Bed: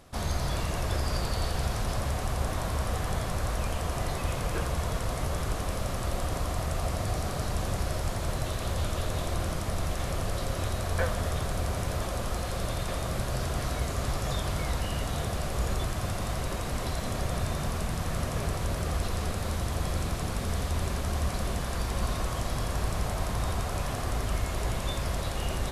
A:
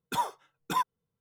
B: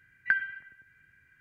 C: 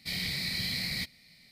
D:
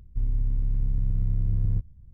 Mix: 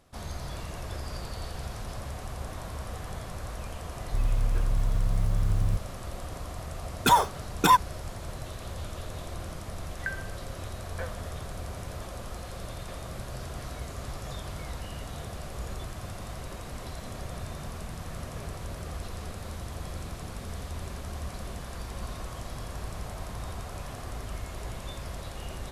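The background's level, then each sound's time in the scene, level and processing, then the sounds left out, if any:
bed -7.5 dB
3.97 add D -1 dB + clock jitter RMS 0.031 ms
6.94 add A -9 dB + maximiser +21.5 dB
9.76 add B -8.5 dB
not used: C

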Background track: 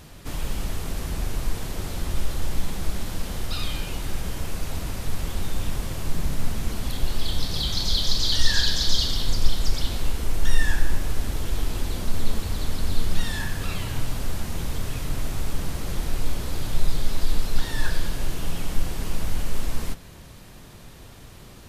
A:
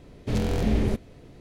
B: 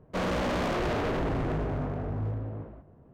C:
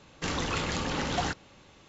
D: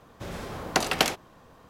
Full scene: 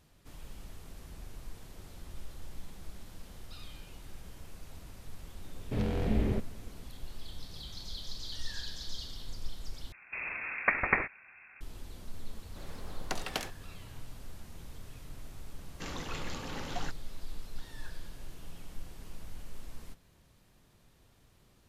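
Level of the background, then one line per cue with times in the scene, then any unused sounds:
background track -19 dB
5.44 add A -6 dB + LPF 3500 Hz
9.92 replace with D -2 dB + inverted band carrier 2600 Hz
12.35 add D -13 dB
15.58 add C -10 dB
not used: B

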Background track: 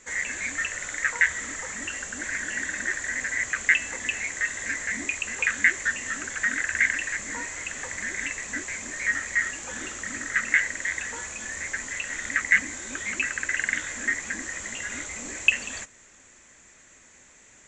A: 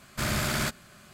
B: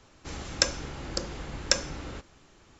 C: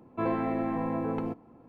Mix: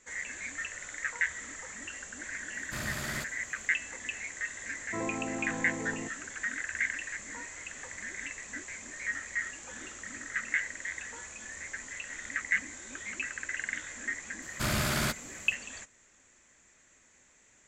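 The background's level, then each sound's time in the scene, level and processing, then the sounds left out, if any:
background track -9 dB
2.54 add A -9.5 dB
4.75 add C -6.5 dB
14.42 add A -1.5 dB
not used: B

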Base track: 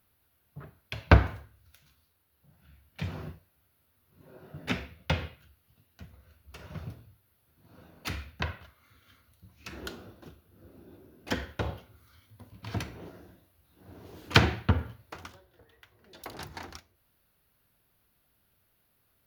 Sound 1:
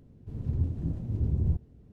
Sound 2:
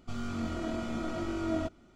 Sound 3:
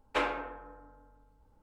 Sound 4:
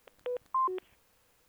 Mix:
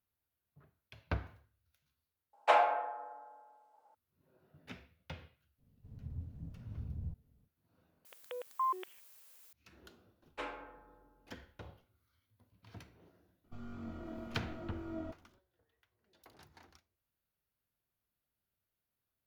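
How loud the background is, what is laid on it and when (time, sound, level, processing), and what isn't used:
base track -18.5 dB
2.33 replace with 3 -2 dB + resonant high-pass 710 Hz, resonance Q 7.6
5.57 add 1 -15 dB, fades 0.05 s + bell 350 Hz -12.5 dB 0.36 oct
8.05 replace with 4 -4 dB + tilt +4 dB/oct
10.23 add 3 -12.5 dB
13.44 add 2 -10.5 dB + LPF 1300 Hz 6 dB/oct

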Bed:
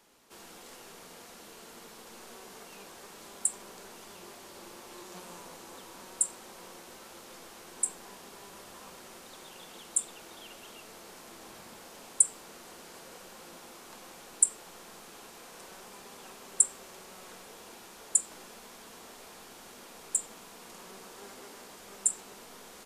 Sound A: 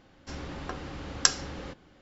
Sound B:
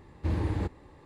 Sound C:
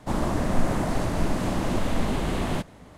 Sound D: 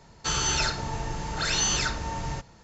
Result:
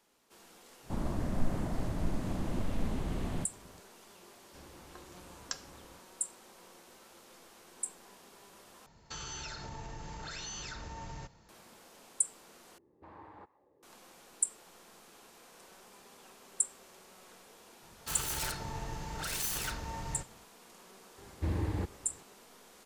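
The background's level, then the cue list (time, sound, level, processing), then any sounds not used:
bed -7.5 dB
0.83 add C -14.5 dB + low shelf 300 Hz +8 dB
4.26 add A -17 dB
8.86 replace with D -8.5 dB + compressor 5:1, threshold -31 dBFS
12.78 replace with B -7.5 dB + auto-wah 340–1000 Hz, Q 2.1, up, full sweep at -30 dBFS
17.82 add D -8 dB + self-modulated delay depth 0.19 ms
21.18 add B -4 dB

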